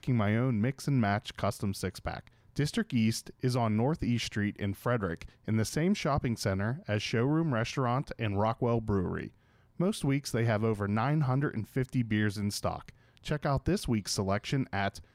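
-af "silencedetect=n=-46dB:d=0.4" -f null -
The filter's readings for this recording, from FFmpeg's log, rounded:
silence_start: 9.29
silence_end: 9.79 | silence_duration: 0.51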